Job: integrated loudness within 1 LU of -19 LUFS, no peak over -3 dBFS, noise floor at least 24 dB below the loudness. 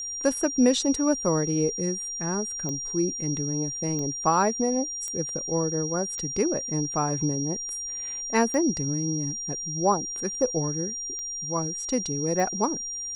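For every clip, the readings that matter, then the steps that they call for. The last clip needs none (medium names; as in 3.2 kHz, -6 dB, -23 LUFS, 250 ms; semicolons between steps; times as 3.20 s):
clicks found 7; steady tone 5.7 kHz; tone level -31 dBFS; loudness -26.0 LUFS; peak level -8.5 dBFS; loudness target -19.0 LUFS
-> de-click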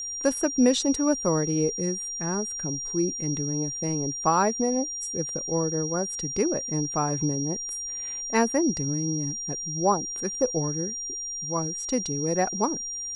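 clicks found 0; steady tone 5.7 kHz; tone level -31 dBFS
-> band-stop 5.7 kHz, Q 30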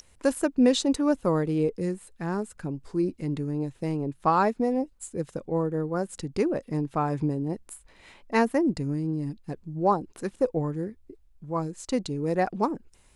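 steady tone not found; loudness -28.0 LUFS; peak level -9.5 dBFS; loudness target -19.0 LUFS
-> trim +9 dB; peak limiter -3 dBFS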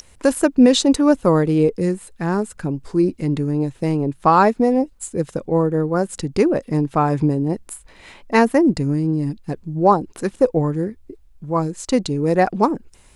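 loudness -19.0 LUFS; peak level -3.0 dBFS; noise floor -50 dBFS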